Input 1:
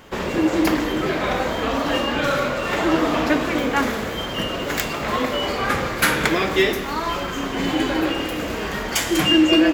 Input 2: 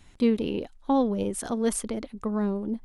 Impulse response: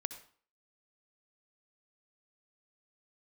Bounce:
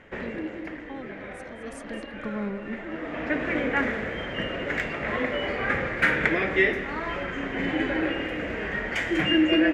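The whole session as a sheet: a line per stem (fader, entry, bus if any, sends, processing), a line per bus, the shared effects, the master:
-5.5 dB, 0.00 s, no send, no echo send, EQ curve 380 Hz 0 dB, 550 Hz +2 dB, 1100 Hz -6 dB, 1900 Hz +8 dB, 4300 Hz -14 dB; auto duck -13 dB, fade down 0.60 s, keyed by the second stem
1.64 s -17 dB -> 2.01 s -4.5 dB, 0.00 s, no send, echo send -11.5 dB, dry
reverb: off
echo: echo 0.215 s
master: LPF 7700 Hz 12 dB/oct

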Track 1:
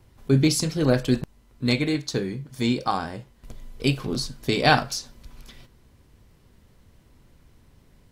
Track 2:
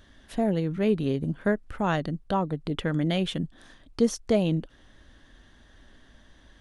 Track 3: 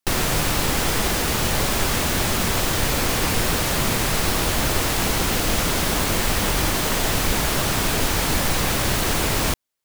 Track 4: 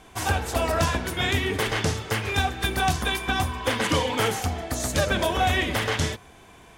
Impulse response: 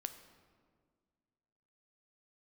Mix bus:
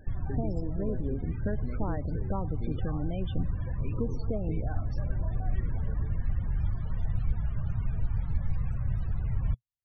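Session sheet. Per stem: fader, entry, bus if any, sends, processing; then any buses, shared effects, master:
-15.5 dB, 0.00 s, send -10 dB, limiter -15 dBFS, peak gain reduction 10.5 dB
+1.5 dB, 0.00 s, send -5 dB, compressor 2.5:1, threshold -40 dBFS, peak gain reduction 15.5 dB
-4.0 dB, 0.00 s, no send, EQ curve 120 Hz 0 dB, 300 Hz -25 dB, 11000 Hz -9 dB
-17.5 dB, 0.00 s, send -15.5 dB, tilt -1.5 dB/oct; auto duck -10 dB, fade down 0.65 s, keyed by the second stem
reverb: on, RT60 1.8 s, pre-delay 7 ms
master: high shelf 2700 Hz -11.5 dB; vocal rider 0.5 s; loudest bins only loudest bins 32

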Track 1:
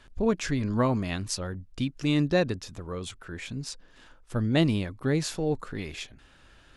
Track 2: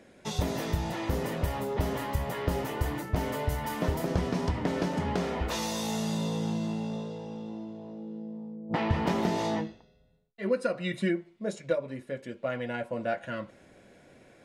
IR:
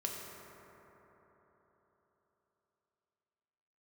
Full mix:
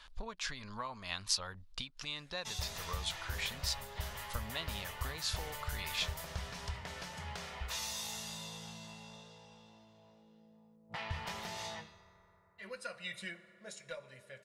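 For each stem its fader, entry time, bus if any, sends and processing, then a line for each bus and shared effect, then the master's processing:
+0.5 dB, 0.00 s, no send, graphic EQ 125/250/500/1000/4000/8000 Hz -6/+10/+4/+11/+8/-3 dB; compressor 4:1, threshold -27 dBFS, peak gain reduction 14 dB
-3.5 dB, 2.20 s, send -11.5 dB, dry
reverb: on, RT60 4.2 s, pre-delay 3 ms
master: passive tone stack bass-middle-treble 10-0-10

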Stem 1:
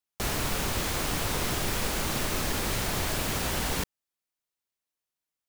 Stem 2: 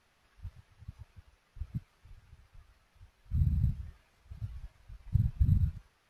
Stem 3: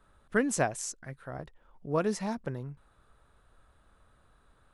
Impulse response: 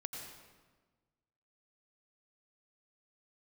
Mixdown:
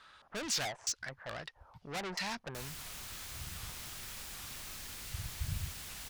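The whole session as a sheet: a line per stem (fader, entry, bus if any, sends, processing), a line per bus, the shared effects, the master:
-6.5 dB, 2.35 s, no send, dry
+2.5 dB, 0.00 s, no send, auto duck -8 dB, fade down 0.25 s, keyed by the third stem
-2.5 dB, 0.00 s, no send, bell 3900 Hz -4.5 dB 0.41 oct; LFO low-pass square 2.3 Hz 780–4400 Hz; overdrive pedal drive 31 dB, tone 7500 Hz, clips at -13 dBFS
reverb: off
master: passive tone stack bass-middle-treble 5-5-5; record warp 78 rpm, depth 250 cents

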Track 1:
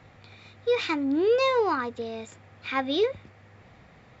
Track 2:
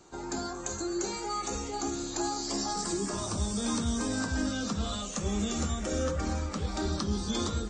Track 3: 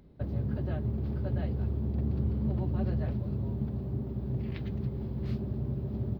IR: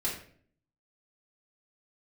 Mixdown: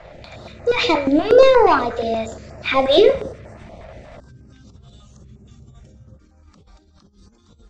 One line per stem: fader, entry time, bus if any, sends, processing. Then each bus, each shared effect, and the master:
+0.5 dB, 0.00 s, send -8 dB, harmonic-percussive split percussive +7 dB; bell 610 Hz +14.5 dB 0.64 oct; sample leveller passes 1
-17.0 dB, 0.00 s, no send, negative-ratio compressor -34 dBFS, ratio -0.5
-15.0 dB, 0.00 s, no send, dry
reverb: on, RT60 0.55 s, pre-delay 3 ms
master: LPF 6200 Hz 12 dB/oct; low shelf 91 Hz +7 dB; stepped notch 8.4 Hz 260–3400 Hz

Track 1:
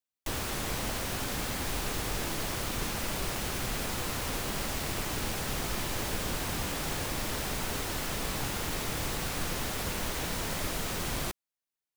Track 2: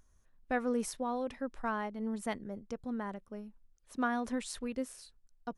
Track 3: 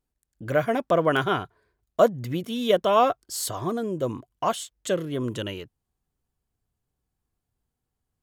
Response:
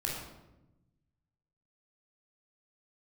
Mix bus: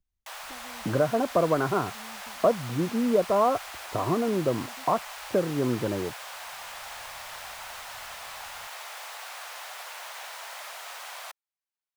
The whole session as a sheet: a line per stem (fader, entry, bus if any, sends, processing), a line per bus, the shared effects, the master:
-1.5 dB, 0.00 s, no send, steep high-pass 650 Hz 36 dB/oct
-12.5 dB, 0.00 s, no send, gate -59 dBFS, range -34 dB; bell 1400 Hz -13.5 dB 2.6 oct; three-band squash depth 100%
-1.0 dB, 0.45 s, no send, steep low-pass 1400 Hz; three-band squash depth 70%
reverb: off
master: high shelf 4100 Hz -7 dB

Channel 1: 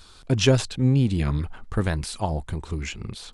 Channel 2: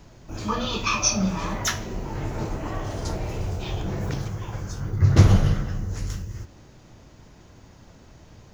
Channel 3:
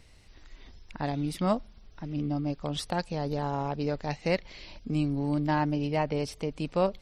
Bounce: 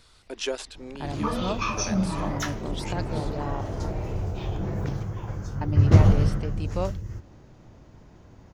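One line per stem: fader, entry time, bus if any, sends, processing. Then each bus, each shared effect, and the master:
-8.0 dB, 0.00 s, no send, HPF 350 Hz 24 dB/oct
-0.5 dB, 0.75 s, no send, high shelf 2100 Hz -10 dB
-3.5 dB, 0.00 s, muted 3.61–5.61, no send, dry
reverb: off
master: dry

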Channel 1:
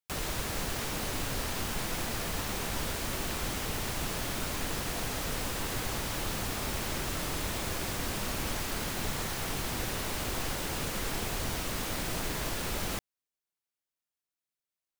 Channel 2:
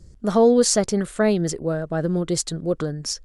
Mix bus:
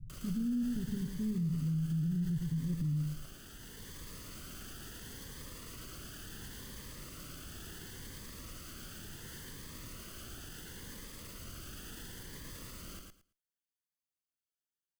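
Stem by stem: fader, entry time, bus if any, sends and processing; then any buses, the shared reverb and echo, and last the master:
-6.5 dB, 0.00 s, no send, echo send -3.5 dB, minimum comb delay 0.64 ms; limiter -33 dBFS, peak gain reduction 11 dB; cascading phaser rising 0.71 Hz; auto duck -13 dB, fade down 1.75 s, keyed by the second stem
-2.0 dB, 0.00 s, no send, echo send -7 dB, inverse Chebyshev low-pass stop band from 670 Hz, stop band 60 dB; comb 7.5 ms, depth 74%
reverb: off
echo: feedback echo 0.112 s, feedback 17%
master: limiter -28 dBFS, peak gain reduction 8 dB

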